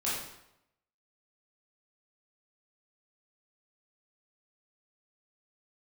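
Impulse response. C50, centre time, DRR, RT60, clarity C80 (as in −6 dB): 0.0 dB, 63 ms, −8.5 dB, 0.85 s, 4.0 dB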